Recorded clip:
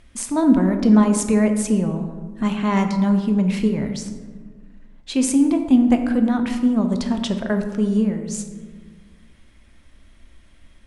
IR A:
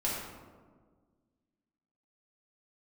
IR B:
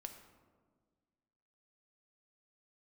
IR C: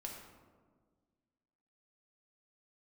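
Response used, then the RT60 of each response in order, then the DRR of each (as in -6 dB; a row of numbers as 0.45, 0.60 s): B; 1.6, 1.6, 1.6 s; -6.5, 5.5, -0.5 dB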